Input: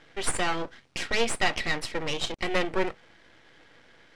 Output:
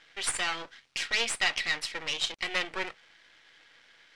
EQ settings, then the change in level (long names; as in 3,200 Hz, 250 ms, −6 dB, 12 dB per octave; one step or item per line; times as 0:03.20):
tilt shelving filter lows −10 dB, about 1,100 Hz
high-shelf EQ 7,900 Hz −10 dB
−4.5 dB